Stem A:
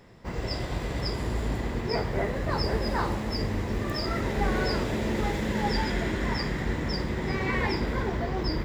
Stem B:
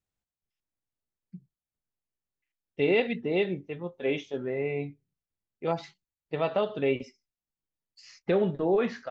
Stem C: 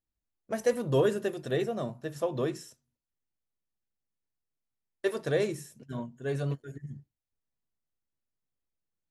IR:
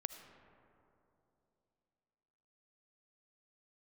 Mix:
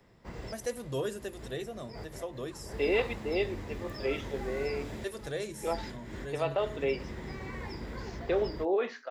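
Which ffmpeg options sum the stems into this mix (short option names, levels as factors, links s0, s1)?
-filter_complex "[0:a]acrossover=split=85|190|1900|5000[s0][s1][s2][s3][s4];[s0]acompressor=threshold=0.0224:ratio=4[s5];[s1]acompressor=threshold=0.0126:ratio=4[s6];[s2]acompressor=threshold=0.0224:ratio=4[s7];[s3]acompressor=threshold=0.00501:ratio=4[s8];[s4]acompressor=threshold=0.00794:ratio=4[s9];[s5][s6][s7][s8][s9]amix=inputs=5:normalize=0,volume=0.376[s10];[1:a]highpass=f=310:w=0.5412,highpass=f=310:w=1.3066,volume=0.708[s11];[2:a]highshelf=f=3200:g=10.5,volume=0.355,asplit=2[s12][s13];[s13]apad=whole_len=381354[s14];[s10][s14]sidechaincompress=threshold=0.00251:ratio=10:attack=46:release=134[s15];[s15][s11][s12]amix=inputs=3:normalize=0"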